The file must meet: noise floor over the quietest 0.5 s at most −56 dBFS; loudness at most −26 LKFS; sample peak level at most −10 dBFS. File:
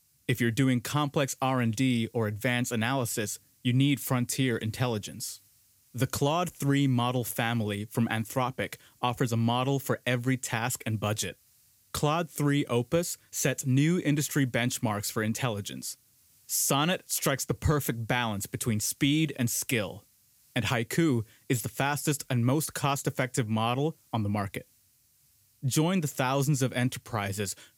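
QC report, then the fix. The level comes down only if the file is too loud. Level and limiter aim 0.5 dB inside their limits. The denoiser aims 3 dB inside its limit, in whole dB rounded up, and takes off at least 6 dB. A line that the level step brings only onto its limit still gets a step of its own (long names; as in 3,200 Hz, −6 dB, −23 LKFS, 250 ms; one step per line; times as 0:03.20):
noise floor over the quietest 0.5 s −66 dBFS: in spec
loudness −29.0 LKFS: in spec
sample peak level −12.0 dBFS: in spec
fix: no processing needed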